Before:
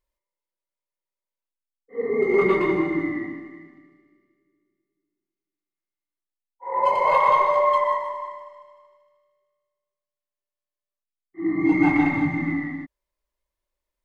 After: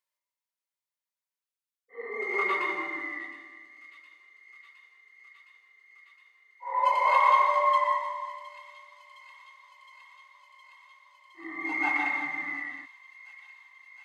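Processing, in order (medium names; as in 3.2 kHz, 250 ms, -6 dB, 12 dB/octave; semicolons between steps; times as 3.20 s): high-pass 1 kHz 12 dB/octave; on a send: feedback echo behind a high-pass 714 ms, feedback 83%, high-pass 3 kHz, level -14 dB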